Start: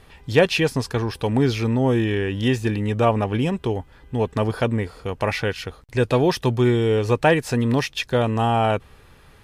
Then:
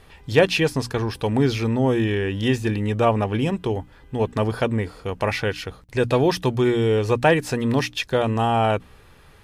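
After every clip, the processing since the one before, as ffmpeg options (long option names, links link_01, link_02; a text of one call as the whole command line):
ffmpeg -i in.wav -af "bandreject=frequency=60:width_type=h:width=6,bandreject=frequency=120:width_type=h:width=6,bandreject=frequency=180:width_type=h:width=6,bandreject=frequency=240:width_type=h:width=6,bandreject=frequency=300:width_type=h:width=6" out.wav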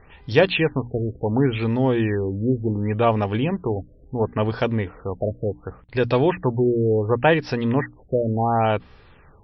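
ffmpeg -i in.wav -af "afftfilt=real='re*lt(b*sr/1024,650*pow(5900/650,0.5+0.5*sin(2*PI*0.7*pts/sr)))':imag='im*lt(b*sr/1024,650*pow(5900/650,0.5+0.5*sin(2*PI*0.7*pts/sr)))':win_size=1024:overlap=0.75" out.wav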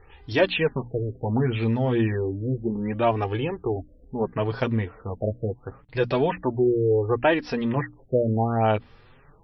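ffmpeg -i in.wav -af "flanger=delay=2.3:depth=6.9:regen=-3:speed=0.29:shape=sinusoidal" out.wav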